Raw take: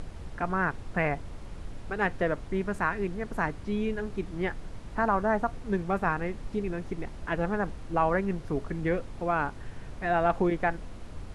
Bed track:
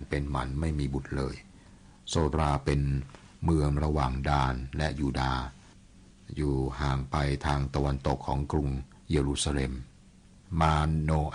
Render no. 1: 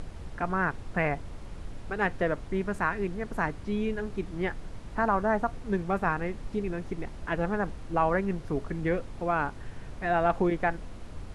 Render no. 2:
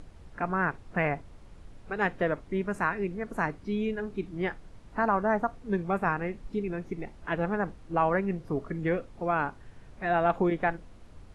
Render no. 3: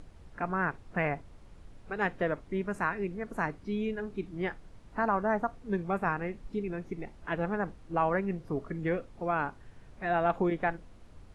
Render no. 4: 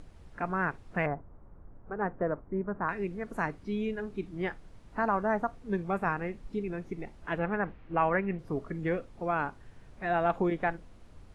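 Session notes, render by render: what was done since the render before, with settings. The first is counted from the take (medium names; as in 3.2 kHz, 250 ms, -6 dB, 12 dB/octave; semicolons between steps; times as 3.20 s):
no audible change
noise print and reduce 9 dB
trim -2.5 dB
1.06–2.89 s: low-pass 1.4 kHz 24 dB/octave; 7.39–8.39 s: resonant low-pass 2.4 kHz, resonance Q 1.8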